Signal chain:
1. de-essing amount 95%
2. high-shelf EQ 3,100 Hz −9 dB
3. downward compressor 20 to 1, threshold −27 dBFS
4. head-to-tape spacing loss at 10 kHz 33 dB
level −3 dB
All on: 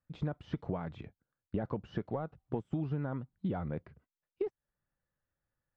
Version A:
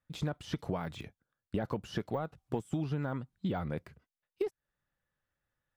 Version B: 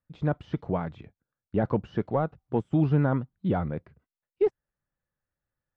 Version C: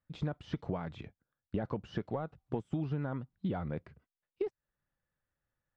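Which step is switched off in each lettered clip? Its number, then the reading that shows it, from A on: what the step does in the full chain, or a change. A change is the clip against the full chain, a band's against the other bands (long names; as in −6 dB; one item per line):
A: 4, 2 kHz band +4.5 dB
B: 3, average gain reduction 7.5 dB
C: 2, 2 kHz band +2.0 dB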